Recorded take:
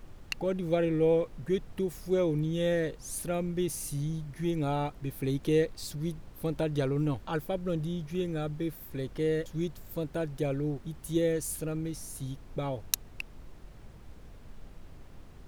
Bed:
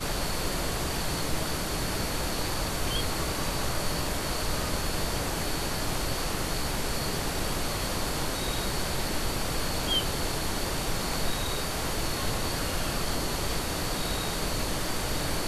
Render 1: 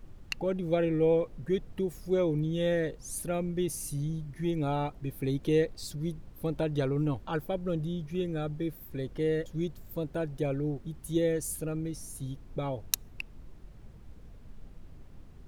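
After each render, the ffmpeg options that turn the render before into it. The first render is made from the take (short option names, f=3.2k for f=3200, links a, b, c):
-af "afftdn=nr=6:nf=-50"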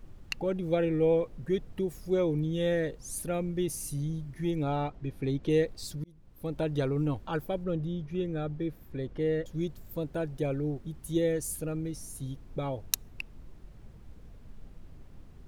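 -filter_complex "[0:a]asettb=1/sr,asplit=3[a][b][c];[a]atrim=end=4.634[d];[b]atrim=start=4.63:end=5.5,asetpts=PTS-STARTPTS,afade=t=in:d=0.004:c=qsin,afade=t=out:st=0.866:d=0.004:c=qsin,adynamicsmooth=sensitivity=6:basefreq=6.1k[e];[c]atrim=start=5.496[f];[d][e]acrossfade=d=0.004:c1=hsin:c2=qsin[g];[g][f]acrossfade=d=0.004:c1=qsin:c2=hsin,asettb=1/sr,asplit=3[h][i][j];[h]atrim=end=7.644[k];[i]atrim=start=7.64:end=9.46,asetpts=PTS-STARTPTS,afade=t=in:d=0.004:c=qsin,afade=t=out:st=1.816:d=0.004:c=qsin,aemphasis=mode=reproduction:type=50kf[l];[j]atrim=start=9.456[m];[k][l]acrossfade=d=0.004:c1=hsin:c2=qsin[n];[n][m]acrossfade=d=0.004:c1=qsin:c2=hsin,asplit=2[o][p];[o]atrim=end=6.04,asetpts=PTS-STARTPTS,afade=t=out:st=6.036:d=0.004:c=hsin[q];[p]atrim=start=6.04,asetpts=PTS-STARTPTS,afade=t=in:d=0.62[r];[q][r]concat=n=2:v=0:a=1"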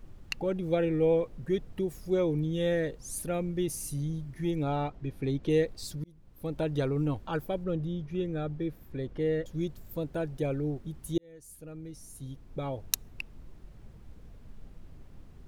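-filter_complex "[0:a]asplit=2[a][b];[a]atrim=end=11.18,asetpts=PTS-STARTPTS,afade=t=out:st=11.176:d=0.004:c=hsin[c];[b]atrim=start=11.18,asetpts=PTS-STARTPTS,afade=t=in:d=1.71[d];[c][d]concat=n=2:v=0:a=1"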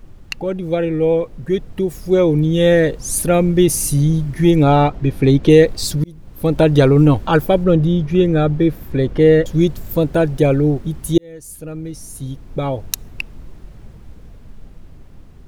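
-af "dynaudnorm=f=440:g=11:m=10dB,alimiter=level_in=8.5dB:limit=-1dB:release=50:level=0:latency=1"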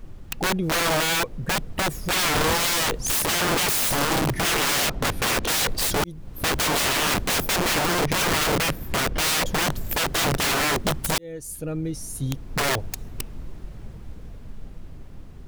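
-af "aeval=exprs='(mod(7.5*val(0)+1,2)-1)/7.5':c=same"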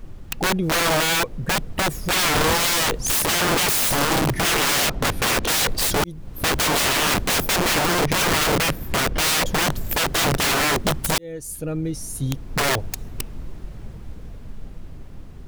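-af "volume=2.5dB"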